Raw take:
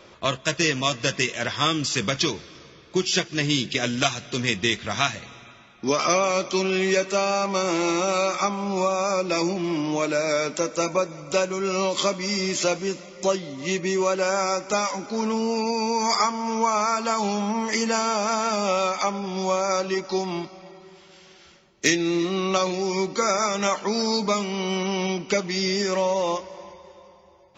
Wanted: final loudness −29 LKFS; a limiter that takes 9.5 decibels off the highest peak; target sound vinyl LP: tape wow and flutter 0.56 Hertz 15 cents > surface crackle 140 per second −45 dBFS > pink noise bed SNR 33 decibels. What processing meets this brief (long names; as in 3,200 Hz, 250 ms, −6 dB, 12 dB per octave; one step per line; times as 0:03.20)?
brickwall limiter −14 dBFS
tape wow and flutter 0.56 Hz 15 cents
surface crackle 140 per second −45 dBFS
pink noise bed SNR 33 dB
level −3.5 dB